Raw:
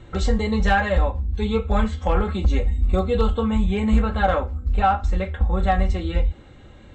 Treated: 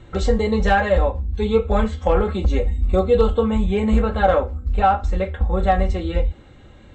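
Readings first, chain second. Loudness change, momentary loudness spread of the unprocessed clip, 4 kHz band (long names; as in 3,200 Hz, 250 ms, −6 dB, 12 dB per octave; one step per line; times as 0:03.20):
+2.0 dB, 5 LU, 0.0 dB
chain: dynamic equaliser 480 Hz, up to +7 dB, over −36 dBFS, Q 1.3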